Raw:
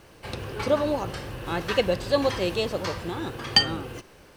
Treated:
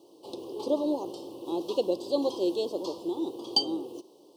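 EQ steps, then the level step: resonant high-pass 330 Hz, resonance Q 3.9; elliptic band-stop 990–3200 Hz, stop band 80 dB; bell 4700 Hz +3 dB 0.31 oct; -7.5 dB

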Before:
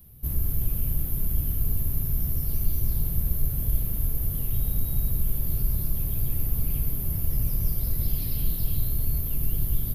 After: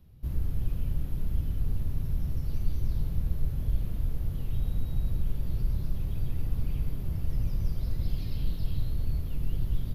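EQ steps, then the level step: air absorption 140 m; high shelf 6100 Hz +6 dB; -2.5 dB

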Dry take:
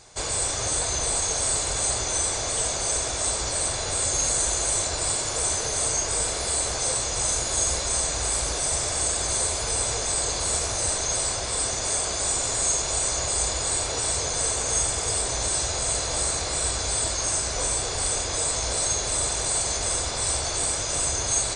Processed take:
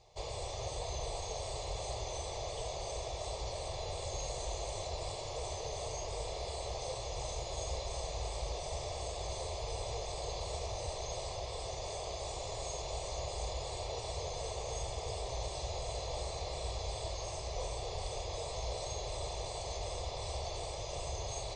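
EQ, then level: air absorption 200 m; fixed phaser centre 620 Hz, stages 4; -6.0 dB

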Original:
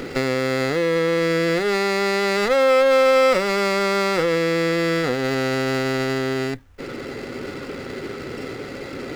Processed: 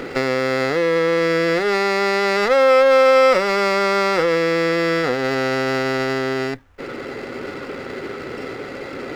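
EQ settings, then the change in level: low shelf 380 Hz -10 dB; high shelf 2900 Hz -11 dB; dynamic EQ 5300 Hz, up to +6 dB, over -56 dBFS, Q 4.7; +6.5 dB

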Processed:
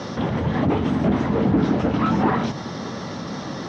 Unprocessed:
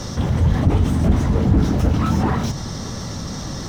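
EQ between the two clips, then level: BPF 210–3600 Hz; air absorption 53 m; +3.0 dB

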